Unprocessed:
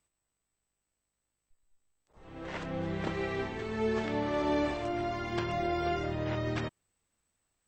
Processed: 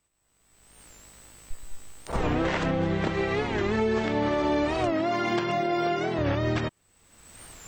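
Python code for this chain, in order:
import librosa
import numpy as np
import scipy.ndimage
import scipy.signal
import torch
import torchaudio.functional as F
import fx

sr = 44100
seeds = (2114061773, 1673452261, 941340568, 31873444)

y = fx.recorder_agc(x, sr, target_db=-21.5, rise_db_per_s=36.0, max_gain_db=30)
y = fx.highpass(y, sr, hz=140.0, slope=24, at=(4.93, 6.2))
y = fx.record_warp(y, sr, rpm=45.0, depth_cents=160.0)
y = y * librosa.db_to_amplitude(4.0)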